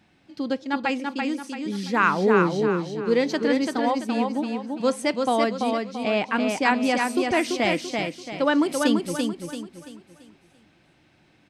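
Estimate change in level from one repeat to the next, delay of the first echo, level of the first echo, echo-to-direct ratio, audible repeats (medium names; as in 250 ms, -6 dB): -8.5 dB, 337 ms, -4.0 dB, -3.5 dB, 4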